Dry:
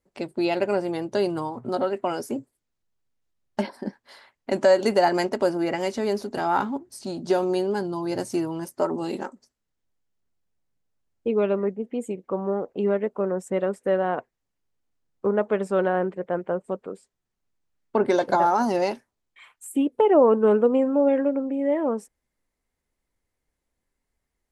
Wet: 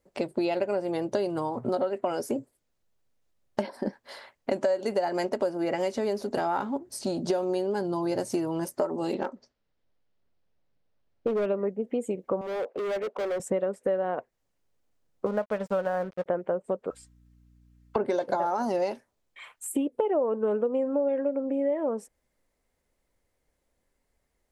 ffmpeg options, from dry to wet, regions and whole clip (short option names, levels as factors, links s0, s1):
-filter_complex "[0:a]asettb=1/sr,asplit=3[s0][s1][s2];[s0]atrim=end=9.134[s3];[s1]atrim=start=9.13:end=11.46,asetpts=PTS-STARTPTS,afade=t=in:d=0.004:c=qsin,afade=t=out:st=2.326:d=0.004:c=qsin,lowpass=f=5000:w=0.5412,lowpass=f=5000:w=1.3066,asoftclip=type=hard:threshold=0.0891[s4];[s2]atrim=start=11.456[s5];[s3][s4]acrossfade=d=0.004:c1=hsin:c2=qsin[s6];[s6][s5]acrossfade=d=0.004:c1=qsin:c2=hsin,asettb=1/sr,asplit=3[s7][s8][s9];[s7]atrim=end=12.414[s10];[s8]atrim=start=12.41:end=13.4,asetpts=PTS-STARTPTS,afade=t=in:d=0.004:c=qsin,afade=t=out:st=0.986:d=0.004:c=qsin,highpass=410,lowpass=3500,volume=50.1,asoftclip=hard,volume=0.02[s11];[s9]atrim=start=13.396[s12];[s10][s11]acrossfade=d=0.004:c1=hsin:c2=qsin[s13];[s13][s12]acrossfade=d=0.004:c1=qsin:c2=hsin,asettb=1/sr,asplit=3[s14][s15][s16];[s14]atrim=end=15.264[s17];[s15]atrim=start=15.26:end=16.26,asetpts=PTS-STARTPTS,afade=t=in:d=0.004:c=qsin,afade=t=out:st=0.996:d=0.004:c=qsin,lowpass=5700,equalizer=f=370:w=2.6:g=-11.5,aeval=exprs='sgn(val(0))*max(abs(val(0))-0.0075,0)':c=same[s18];[s16]atrim=start=16.256[s19];[s17][s18]acrossfade=d=0.004:c1=hsin:c2=qsin[s20];[s20][s19]acrossfade=d=0.004:c1=qsin:c2=hsin,asettb=1/sr,asplit=3[s21][s22][s23];[s21]atrim=end=16.904[s24];[s22]atrim=start=16.9:end=17.96,asetpts=PTS-STARTPTS,afade=t=in:d=0.004:c=qsin,afade=t=out:st=1.056:d=0.004:c=qsin,highpass=f=1100:w=0.5412,highpass=f=1100:w=1.3066,aecho=1:1:3.8:0.88,atrim=end_sample=46746,aeval=exprs='val(0)+0.000891*(sin(2*PI*60*n/s)+sin(2*PI*2*60*n/s)/2+sin(2*PI*3*60*n/s)/3+sin(2*PI*4*60*n/s)/4+sin(2*PI*5*60*n/s)/5)':c=same[s25];[s23]atrim=start=17.956[s26];[s24][s25]acrossfade=d=0.004:c1=hsin:c2=qsin[s27];[s27][s26]acrossfade=d=0.004:c1=qsin:c2=hsin,equalizer=f=560:w=2.1:g=6,acompressor=threshold=0.0355:ratio=5,volume=1.5"